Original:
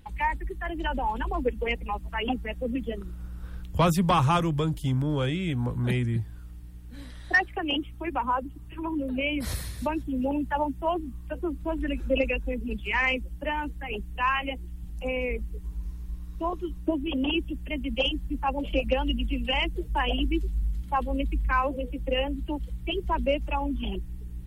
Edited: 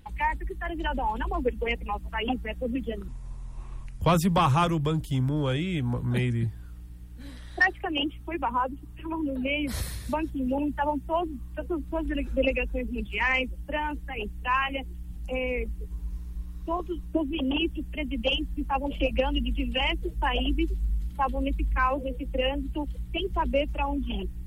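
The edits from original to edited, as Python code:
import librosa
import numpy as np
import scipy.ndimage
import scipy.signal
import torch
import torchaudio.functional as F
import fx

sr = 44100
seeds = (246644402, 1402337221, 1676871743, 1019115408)

y = fx.edit(x, sr, fx.speed_span(start_s=3.08, length_s=0.66, speed=0.71), tone=tone)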